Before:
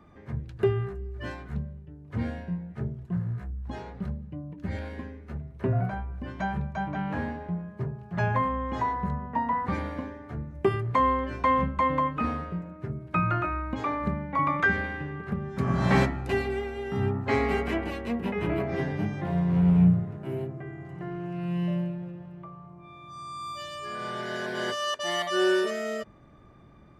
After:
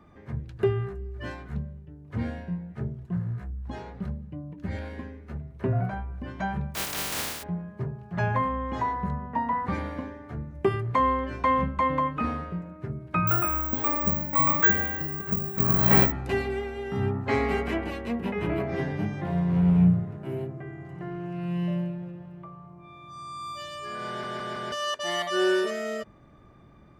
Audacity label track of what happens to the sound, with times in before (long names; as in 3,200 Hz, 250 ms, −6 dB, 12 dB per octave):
6.740000	7.420000	compressing power law on the bin magnitudes exponent 0.13
13.270000	16.120000	bad sample-rate conversion rate divided by 2×, down none, up zero stuff
24.080000	24.080000	stutter in place 0.16 s, 4 plays